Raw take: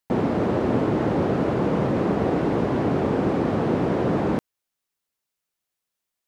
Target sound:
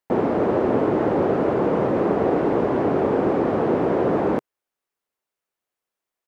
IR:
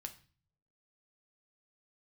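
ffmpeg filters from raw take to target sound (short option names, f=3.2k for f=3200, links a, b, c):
-af "firequalizer=gain_entry='entry(140,0);entry(390,9);entry(3900,-1)':delay=0.05:min_phase=1,volume=-4.5dB"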